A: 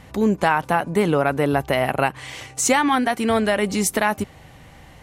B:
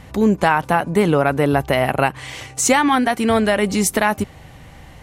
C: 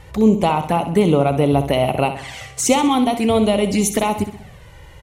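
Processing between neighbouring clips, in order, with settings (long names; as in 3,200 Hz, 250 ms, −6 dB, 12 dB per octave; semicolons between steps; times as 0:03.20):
low-shelf EQ 130 Hz +4 dB; level +2.5 dB
flanger swept by the level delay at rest 2.4 ms, full sweep at −14 dBFS; repeating echo 64 ms, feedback 47%, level −10.5 dB; level +1.5 dB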